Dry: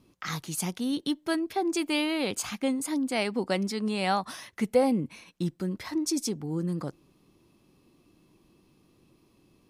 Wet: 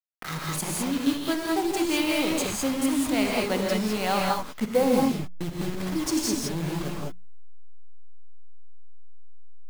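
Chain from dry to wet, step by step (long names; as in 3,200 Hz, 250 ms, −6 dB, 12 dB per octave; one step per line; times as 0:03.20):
hold until the input has moved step −31 dBFS
mains-hum notches 60/120/180 Hz
reverb whose tail is shaped and stops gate 230 ms rising, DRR −2 dB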